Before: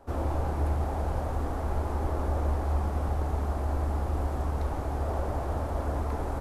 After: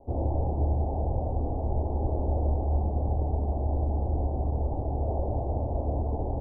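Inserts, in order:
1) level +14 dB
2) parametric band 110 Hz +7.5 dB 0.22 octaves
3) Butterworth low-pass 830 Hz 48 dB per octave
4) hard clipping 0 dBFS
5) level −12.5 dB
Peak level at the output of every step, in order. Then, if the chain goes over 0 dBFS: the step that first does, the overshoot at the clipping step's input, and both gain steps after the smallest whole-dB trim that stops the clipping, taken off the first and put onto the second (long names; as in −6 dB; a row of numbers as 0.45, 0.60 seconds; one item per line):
−2.0, −2.0, −2.5, −2.5, −15.0 dBFS
no step passes full scale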